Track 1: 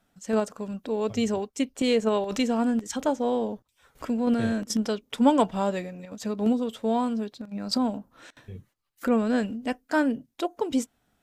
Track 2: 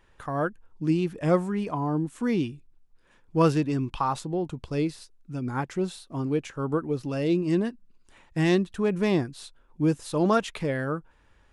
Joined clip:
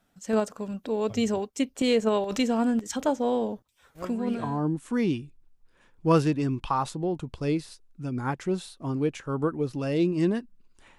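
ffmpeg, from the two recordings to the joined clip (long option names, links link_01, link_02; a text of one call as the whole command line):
ffmpeg -i cue0.wav -i cue1.wav -filter_complex "[0:a]apad=whole_dur=10.98,atrim=end=10.98,atrim=end=4.66,asetpts=PTS-STARTPTS[link_01];[1:a]atrim=start=1.24:end=8.28,asetpts=PTS-STARTPTS[link_02];[link_01][link_02]acrossfade=duration=0.72:curve1=tri:curve2=tri" out.wav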